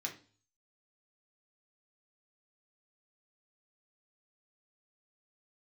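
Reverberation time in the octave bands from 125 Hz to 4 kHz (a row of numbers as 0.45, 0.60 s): 0.70, 0.50, 0.40, 0.40, 0.35, 0.45 s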